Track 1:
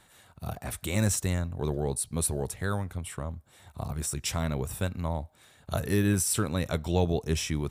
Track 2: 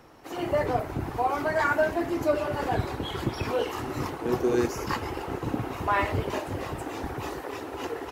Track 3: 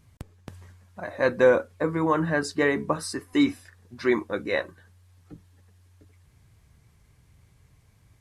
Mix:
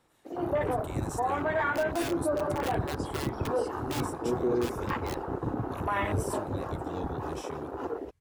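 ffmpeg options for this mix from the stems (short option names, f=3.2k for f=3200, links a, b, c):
-filter_complex "[0:a]volume=-14.5dB[a];[1:a]afwtdn=0.02,volume=-0.5dB[b];[2:a]aeval=exprs='(mod(6.68*val(0)+1,2)-1)/6.68':c=same,adelay=550,volume=-15.5dB[c];[a][b][c]amix=inputs=3:normalize=0,alimiter=limit=-20dB:level=0:latency=1:release=33"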